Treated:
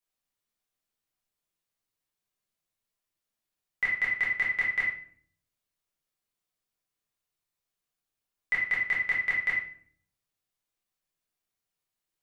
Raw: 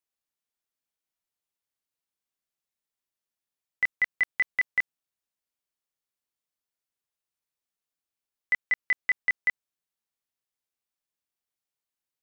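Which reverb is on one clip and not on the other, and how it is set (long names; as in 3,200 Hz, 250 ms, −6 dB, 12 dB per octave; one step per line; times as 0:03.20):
rectangular room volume 65 cubic metres, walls mixed, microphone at 1.3 metres
level −3 dB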